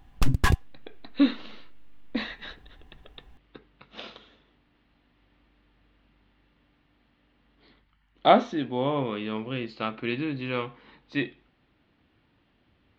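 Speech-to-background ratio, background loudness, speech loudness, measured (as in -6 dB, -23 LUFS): -1.5 dB, -26.5 LUFS, -28.0 LUFS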